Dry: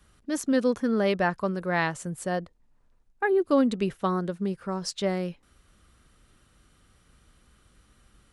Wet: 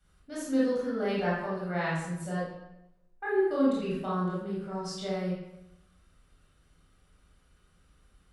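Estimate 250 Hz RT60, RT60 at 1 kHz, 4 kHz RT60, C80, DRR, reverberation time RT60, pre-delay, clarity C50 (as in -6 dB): 1.0 s, 0.80 s, 0.70 s, 3.5 dB, -7.5 dB, 0.85 s, 20 ms, -0.5 dB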